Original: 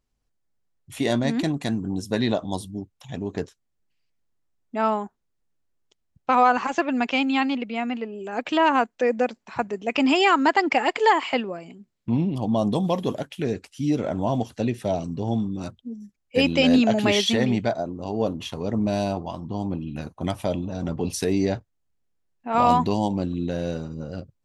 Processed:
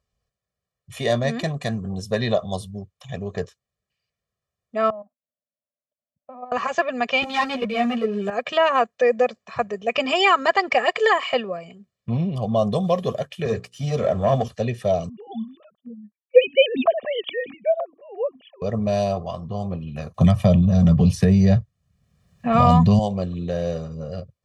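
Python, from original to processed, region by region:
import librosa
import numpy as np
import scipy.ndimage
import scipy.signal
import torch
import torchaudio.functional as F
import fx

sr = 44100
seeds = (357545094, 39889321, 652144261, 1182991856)

y = fx.chain(x, sr, fx.level_steps(step_db=15),
    fx.double_bandpass(hz=390.0, octaves=1.2), at=(4.9, 6.52))
y = fx.chain(y, sr, fx.low_shelf(hz=290.0, db=6.5),
    fx.leveller(passes=2),
    fx.ensemble(), at=(7.22, 8.3))
y = fx.chain(y, sr, fx.hum_notches(base_hz=60, count=8),
    fx.leveller(passes=1),
    fx.band_widen(depth_pct=40), at=(13.45, 14.48))
y = fx.chain(y, sr, fx.sine_speech(),
    fx.upward_expand(threshold_db=-39.0, expansion=1.5), at=(15.09, 18.62))
y = fx.chain(y, sr, fx.low_shelf_res(hz=270.0, db=10.5, q=1.5),
    fx.band_squash(depth_pct=70), at=(20.14, 22.99))
y = scipy.signal.sosfilt(scipy.signal.butter(2, 66.0, 'highpass', fs=sr, output='sos'), y)
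y = fx.high_shelf(y, sr, hz=9600.0, db=-10.5)
y = y + 0.93 * np.pad(y, (int(1.7 * sr / 1000.0), 0))[:len(y)]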